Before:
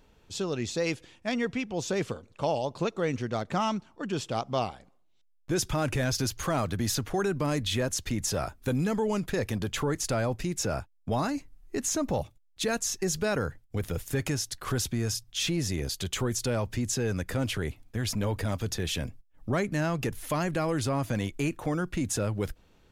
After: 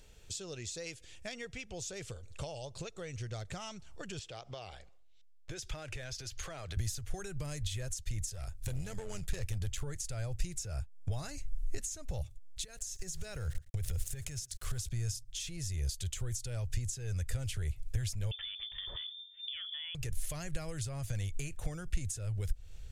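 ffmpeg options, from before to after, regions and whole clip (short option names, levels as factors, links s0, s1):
-filter_complex "[0:a]asettb=1/sr,asplit=3[s0][s1][s2];[s0]atrim=end=4.194[s3];[s1]atrim=start=4.19:end=6.77,asetpts=PTS-STARTPTS,afade=t=in:d=0.004:c=qsin,afade=t=out:st=2.576:d=0.004:c=qsin,acompressor=threshold=0.0178:ratio=3:attack=3.2:release=140:knee=1:detection=peak,acrossover=split=250 5200:gain=0.251 1 0.2[s4][s5][s6];[s4][s5][s6]amix=inputs=3:normalize=0[s7];[s2]atrim=start=6.766[s8];[s3][s7]acrossfade=d=0.004:c1=hsin:c2=qsin[s9];[s9][s8]acrossfade=d=0.004:c1=qsin:c2=hsin,asettb=1/sr,asplit=3[s10][s11][s12];[s10]atrim=end=8.304[s13];[s11]atrim=start=8.3:end=9.83,asetpts=PTS-STARTPTS,afade=t=in:d=0.004:c=qsin,afade=t=out:st=1.526:d=0.004:c=qsin,tremolo=f=92:d=0.571,asoftclip=type=hard:threshold=0.0473[s14];[s12]atrim=start=9.826[s15];[s13][s14]acrossfade=d=0.004:c1=hsin:c2=qsin[s16];[s16][s15]acrossfade=d=0.004:c1=qsin:c2=hsin,asettb=1/sr,asplit=3[s17][s18][s19];[s17]atrim=end=12.644[s20];[s18]atrim=start=12.64:end=14.91,asetpts=PTS-STARTPTS,afade=t=in:d=0.004:c=qsin,afade=t=out:st=2.266:d=0.004:c=qsin,aeval=exprs='val(0)*gte(abs(val(0)),0.00473)':c=same,acompressor=threshold=0.02:ratio=10:attack=3.2:release=140:knee=1:detection=peak,aecho=1:1:113:0.0841,atrim=end_sample=100107[s21];[s19]atrim=start=14.906[s22];[s20][s21]acrossfade=d=0.004:c1=hsin:c2=qsin[s23];[s23][s22]acrossfade=d=0.004:c1=qsin:c2=hsin,asettb=1/sr,asplit=3[s24][s25][s26];[s24]atrim=end=18.314[s27];[s25]atrim=start=18.31:end=19.95,asetpts=PTS-STARTPTS,afade=t=in:d=0.004:c=qsin,afade=t=out:st=1.636:d=0.004:c=qsin,bandreject=f=46.24:t=h:w=4,bandreject=f=92.48:t=h:w=4,bandreject=f=138.72:t=h:w=4,bandreject=f=184.96:t=h:w=4,bandreject=f=231.2:t=h:w=4,bandreject=f=277.44:t=h:w=4,bandreject=f=323.68:t=h:w=4,bandreject=f=369.92:t=h:w=4,bandreject=f=416.16:t=h:w=4,bandreject=f=462.4:t=h:w=4,acompressor=threshold=0.0355:ratio=6:attack=3.2:release=140:knee=1:detection=peak,lowpass=f=3100:t=q:w=0.5098,lowpass=f=3100:t=q:w=0.6013,lowpass=f=3100:t=q:w=0.9,lowpass=f=3100:t=q:w=2.563,afreqshift=-3600[s28];[s26]atrim=start=19.946[s29];[s27][s28]acrossfade=d=0.004:c1=hsin:c2=qsin[s30];[s30][s29]acrossfade=d=0.004:c1=qsin:c2=hsin,equalizer=f=250:t=o:w=1:g=-11,equalizer=f=1000:t=o:w=1:g=-11,equalizer=f=8000:t=o:w=1:g=9,acompressor=threshold=0.00631:ratio=6,asubboost=boost=7.5:cutoff=88,volume=1.5"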